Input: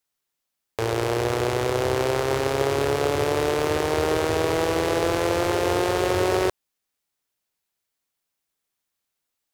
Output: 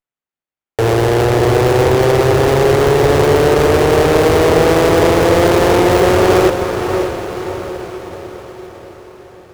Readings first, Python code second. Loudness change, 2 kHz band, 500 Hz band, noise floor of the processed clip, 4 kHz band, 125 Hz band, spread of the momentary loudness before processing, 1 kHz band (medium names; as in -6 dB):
+11.0 dB, +10.0 dB, +12.0 dB, under -85 dBFS, +8.5 dB, +14.0 dB, 2 LU, +10.5 dB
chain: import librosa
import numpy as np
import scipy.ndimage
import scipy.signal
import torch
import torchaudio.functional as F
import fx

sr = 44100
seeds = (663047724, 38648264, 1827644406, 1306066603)

y = fx.leveller(x, sr, passes=5)
y = fx.echo_diffused(y, sr, ms=579, feedback_pct=54, wet_db=-6.5)
y = fx.running_max(y, sr, window=9)